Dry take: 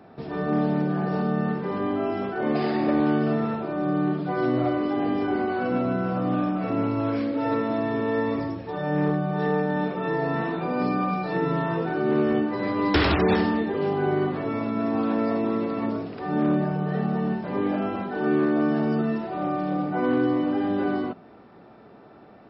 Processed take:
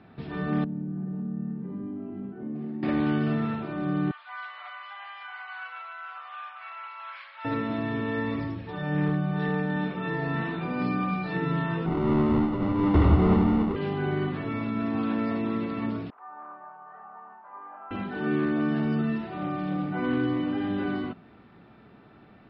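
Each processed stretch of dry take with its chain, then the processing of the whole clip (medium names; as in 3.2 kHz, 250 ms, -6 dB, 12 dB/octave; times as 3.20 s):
0.64–2.83 s: band-pass filter 220 Hz, Q 1.7 + compression 2.5:1, threshold -29 dBFS
4.11–7.45 s: steep high-pass 890 Hz + distance through air 180 m
11.86–13.76 s: square wave that keeps the level + Savitzky-Golay filter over 65 samples
16.10–17.91 s: Butterworth band-pass 1 kHz, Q 2 + distance through air 140 m
whole clip: low-pass 3.8 kHz 24 dB/octave; peaking EQ 580 Hz -12.5 dB 2.3 oct; trim +3.5 dB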